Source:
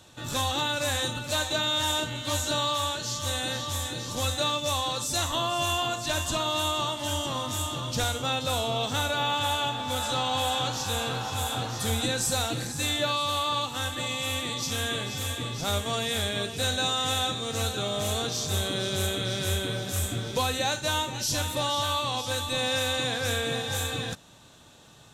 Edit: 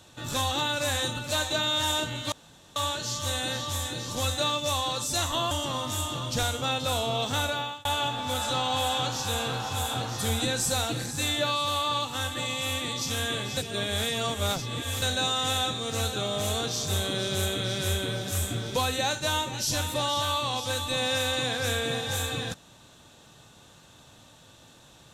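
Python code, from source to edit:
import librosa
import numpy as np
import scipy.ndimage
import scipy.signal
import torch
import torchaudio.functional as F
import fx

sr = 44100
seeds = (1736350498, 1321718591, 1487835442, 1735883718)

y = fx.edit(x, sr, fx.room_tone_fill(start_s=2.32, length_s=0.44),
    fx.cut(start_s=5.51, length_s=1.61),
    fx.fade_out_span(start_s=9.07, length_s=0.39),
    fx.reverse_span(start_s=15.18, length_s=1.45), tone=tone)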